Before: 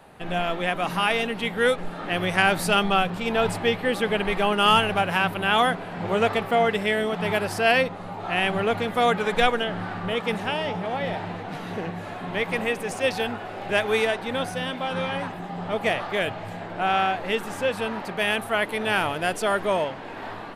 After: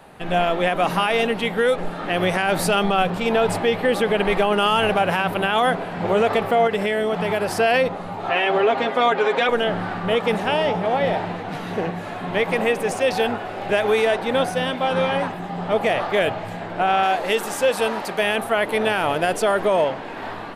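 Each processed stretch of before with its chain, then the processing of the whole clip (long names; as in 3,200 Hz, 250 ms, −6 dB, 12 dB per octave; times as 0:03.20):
0:06.67–0:07.48: notch filter 3,700 Hz, Q 24 + downward compressor, threshold −24 dBFS
0:08.29–0:09.49: band-pass filter 270–5,300 Hz + comb filter 7.5 ms, depth 70%
0:17.03–0:18.19: bass and treble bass −6 dB, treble +8 dB + hard clipping −12.5 dBFS
whole clip: mains-hum notches 50/100 Hz; dynamic equaliser 550 Hz, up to +5 dB, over −34 dBFS, Q 0.89; brickwall limiter −14 dBFS; level +4 dB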